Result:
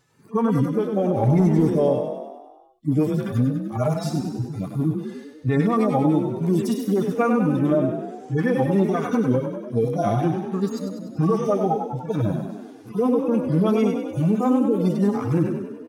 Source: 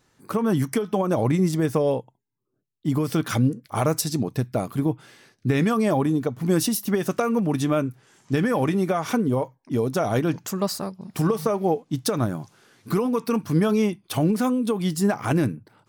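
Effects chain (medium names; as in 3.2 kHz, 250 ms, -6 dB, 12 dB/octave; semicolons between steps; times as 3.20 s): harmonic-percussive separation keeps harmonic; dynamic bell 890 Hz, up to +5 dB, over -36 dBFS, Q 0.8; 1.23–1.70 s: waveshaping leveller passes 1; peak limiter -15 dBFS, peak gain reduction 5.5 dB; frequency-shifting echo 98 ms, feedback 60%, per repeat +30 Hz, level -7 dB; trim +2.5 dB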